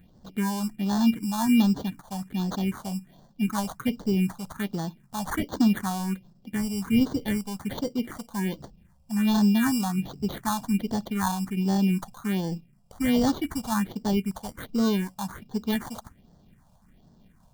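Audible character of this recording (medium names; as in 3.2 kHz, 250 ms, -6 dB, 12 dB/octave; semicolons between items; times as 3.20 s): aliases and images of a low sample rate 2.6 kHz, jitter 0%; phasing stages 4, 1.3 Hz, lowest notch 320–2400 Hz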